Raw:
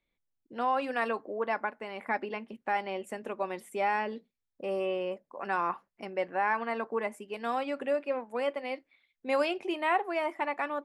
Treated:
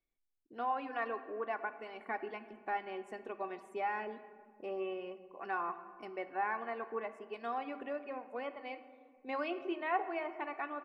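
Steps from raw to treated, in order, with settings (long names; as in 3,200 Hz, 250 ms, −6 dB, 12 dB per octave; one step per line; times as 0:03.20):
reverb reduction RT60 0.51 s
treble cut that deepens with the level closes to 2,800 Hz, closed at −29.5 dBFS
comb filter 2.7 ms, depth 39%
on a send at −10 dB: convolution reverb RT60 2.0 s, pre-delay 3 ms
on the sum: one half of a high-frequency compander decoder only
level −7.5 dB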